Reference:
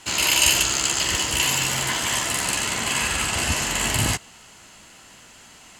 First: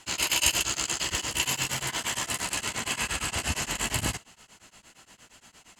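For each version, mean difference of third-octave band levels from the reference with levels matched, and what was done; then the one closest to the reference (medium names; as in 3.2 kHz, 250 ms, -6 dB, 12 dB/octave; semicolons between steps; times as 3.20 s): 2.5 dB: tremolo of two beating tones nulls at 8.6 Hz; trim -4 dB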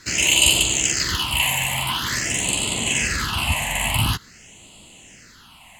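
4.5 dB: phase shifter stages 6, 0.47 Hz, lowest notch 360–1600 Hz; trim +3.5 dB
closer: first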